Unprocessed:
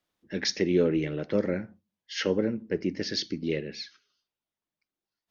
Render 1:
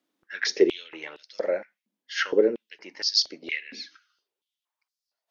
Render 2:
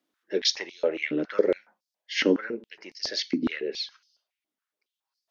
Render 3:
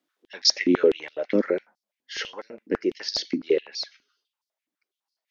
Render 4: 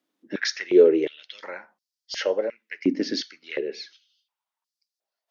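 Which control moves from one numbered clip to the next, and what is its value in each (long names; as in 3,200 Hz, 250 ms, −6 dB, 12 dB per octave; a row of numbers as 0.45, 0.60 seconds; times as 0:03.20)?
high-pass on a step sequencer, speed: 4.3, 7.2, 12, 2.8 Hertz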